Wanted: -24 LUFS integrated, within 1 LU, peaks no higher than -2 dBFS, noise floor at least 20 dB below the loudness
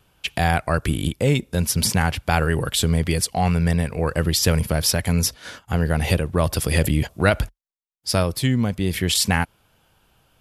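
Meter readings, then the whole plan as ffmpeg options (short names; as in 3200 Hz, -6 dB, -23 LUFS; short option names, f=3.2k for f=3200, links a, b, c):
loudness -21.5 LUFS; peak -2.5 dBFS; loudness target -24.0 LUFS
-> -af "volume=-2.5dB"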